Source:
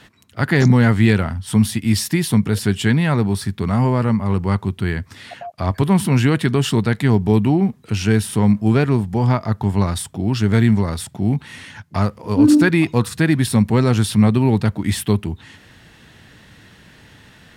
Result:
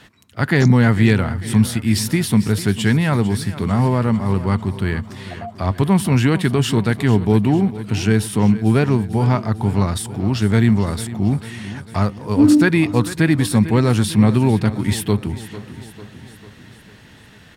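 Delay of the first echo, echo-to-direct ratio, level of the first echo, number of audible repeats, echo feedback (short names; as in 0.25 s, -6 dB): 0.448 s, -13.5 dB, -15.0 dB, 5, 57%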